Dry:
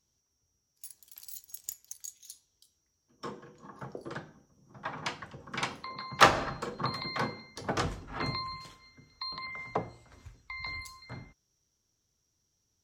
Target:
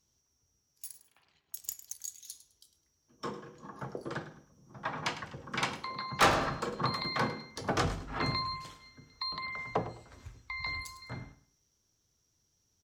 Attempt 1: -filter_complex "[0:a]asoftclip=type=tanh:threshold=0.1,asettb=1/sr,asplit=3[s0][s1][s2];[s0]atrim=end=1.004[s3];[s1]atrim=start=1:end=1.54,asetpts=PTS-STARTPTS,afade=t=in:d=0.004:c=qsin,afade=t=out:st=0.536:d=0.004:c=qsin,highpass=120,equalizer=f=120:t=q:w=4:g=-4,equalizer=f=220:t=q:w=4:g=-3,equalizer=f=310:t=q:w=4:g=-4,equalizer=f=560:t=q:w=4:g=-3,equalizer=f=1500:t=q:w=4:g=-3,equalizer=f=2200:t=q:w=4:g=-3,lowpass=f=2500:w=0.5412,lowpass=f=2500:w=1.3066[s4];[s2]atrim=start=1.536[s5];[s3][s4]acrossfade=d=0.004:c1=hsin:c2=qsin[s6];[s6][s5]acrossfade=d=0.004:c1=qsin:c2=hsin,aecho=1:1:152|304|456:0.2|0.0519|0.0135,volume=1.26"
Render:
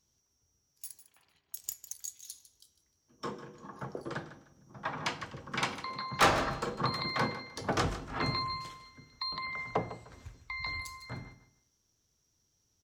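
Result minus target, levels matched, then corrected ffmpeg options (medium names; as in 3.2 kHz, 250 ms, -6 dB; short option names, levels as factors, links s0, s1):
echo 48 ms late
-filter_complex "[0:a]asoftclip=type=tanh:threshold=0.1,asettb=1/sr,asplit=3[s0][s1][s2];[s0]atrim=end=1.004[s3];[s1]atrim=start=1:end=1.54,asetpts=PTS-STARTPTS,afade=t=in:d=0.004:c=qsin,afade=t=out:st=0.536:d=0.004:c=qsin,highpass=120,equalizer=f=120:t=q:w=4:g=-4,equalizer=f=220:t=q:w=4:g=-3,equalizer=f=310:t=q:w=4:g=-4,equalizer=f=560:t=q:w=4:g=-3,equalizer=f=1500:t=q:w=4:g=-3,equalizer=f=2200:t=q:w=4:g=-3,lowpass=f=2500:w=0.5412,lowpass=f=2500:w=1.3066[s4];[s2]atrim=start=1.536[s5];[s3][s4]acrossfade=d=0.004:c1=hsin:c2=qsin[s6];[s6][s5]acrossfade=d=0.004:c1=qsin:c2=hsin,aecho=1:1:104|208|312:0.2|0.0519|0.0135,volume=1.26"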